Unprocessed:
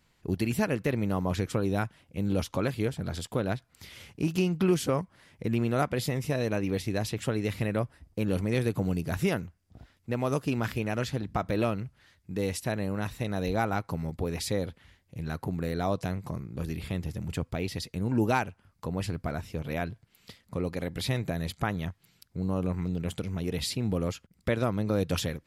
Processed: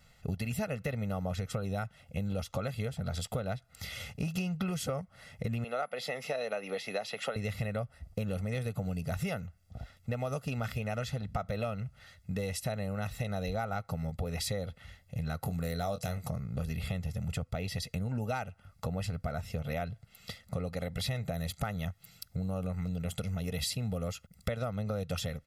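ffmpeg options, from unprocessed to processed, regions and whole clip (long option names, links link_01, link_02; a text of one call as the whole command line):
ffmpeg -i in.wav -filter_complex "[0:a]asettb=1/sr,asplit=3[link_01][link_02][link_03];[link_01]atrim=end=5.644[link_04];[link_02]atrim=start=5.64:end=7.36,asetpts=PTS-STARTPTS,afade=type=in:duration=0.004:curve=qsin,afade=type=out:start_time=1.716:duration=0.004:curve=qsin,highpass=frequency=160:width=0.5412,highpass=frequency=160:width=1.3066,acrossover=split=350 5100:gain=0.158 1 0.178[link_05][link_06][link_07];[link_05][link_06][link_07]amix=inputs=3:normalize=0,aeval=exprs='val(0)+0.00447*sin(2*PI*11000*n/s)':channel_layout=same[link_08];[link_03]atrim=start=7.356[link_09];[link_04][link_08]acrossfade=duration=0.004:curve1=hsin:curve2=qsin[link_10];[link_10][link_09]acrossfade=duration=0.004:curve1=qsin:curve2=hsin,asettb=1/sr,asplit=3[link_11][link_12][link_13];[link_11]atrim=end=15.424[link_14];[link_12]atrim=start=15.42:end=16.28,asetpts=PTS-STARTPTS,afade=type=in:duration=0.004:curve=qsin,afade=type=out:start_time=0.856:duration=0.004:curve=qsin,highshelf=frequency=4500:gain=10.5,asplit=2[link_15][link_16];[link_16]adelay=24,volume=-9.5dB[link_17];[link_15][link_17]amix=inputs=2:normalize=0,atrim=end_sample=37926[link_18];[link_13]atrim=start=16.276[link_19];[link_14][link_18]acrossfade=duration=0.004:curve1=hsin:curve2=qsin[link_20];[link_20][link_19]acrossfade=duration=0.004:curve1=qsin:curve2=hsin,asettb=1/sr,asplit=3[link_21][link_22][link_23];[link_21]atrim=end=21.334[link_24];[link_22]atrim=start=21.33:end=24.48,asetpts=PTS-STARTPTS,afade=type=in:duration=0.004:curve=qsin,afade=type=out:start_time=3.146:duration=0.004:curve=qsin,highshelf=frequency=7600:gain=7,asoftclip=type=hard:threshold=-18dB[link_25];[link_23]atrim=start=24.476[link_26];[link_24][link_25]acrossfade=duration=0.004:curve1=hsin:curve2=qsin[link_27];[link_27][link_26]acrossfade=duration=0.004:curve1=qsin:curve2=hsin,aecho=1:1:1.5:0.89,acompressor=threshold=-35dB:ratio=5,volume=3dB" out.wav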